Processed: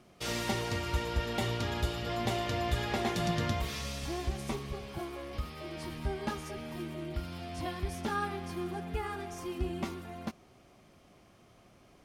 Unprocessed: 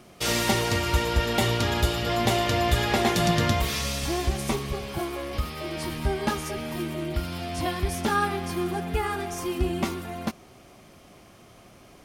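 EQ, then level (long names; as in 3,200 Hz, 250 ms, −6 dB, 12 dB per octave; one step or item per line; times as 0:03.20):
bass and treble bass +1 dB, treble +3 dB
high-shelf EQ 6,000 Hz −9.5 dB
−9.0 dB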